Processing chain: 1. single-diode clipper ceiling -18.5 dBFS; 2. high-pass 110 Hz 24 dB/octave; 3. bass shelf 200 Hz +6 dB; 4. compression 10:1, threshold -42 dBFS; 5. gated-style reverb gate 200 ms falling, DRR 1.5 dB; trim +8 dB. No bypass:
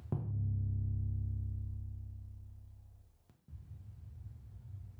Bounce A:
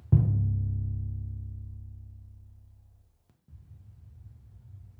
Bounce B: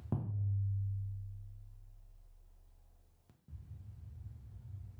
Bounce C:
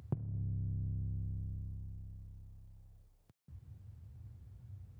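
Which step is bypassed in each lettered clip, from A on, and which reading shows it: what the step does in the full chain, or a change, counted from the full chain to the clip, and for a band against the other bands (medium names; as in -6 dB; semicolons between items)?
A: 4, mean gain reduction 3.5 dB; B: 1, crest factor change +3.5 dB; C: 5, crest factor change +3.0 dB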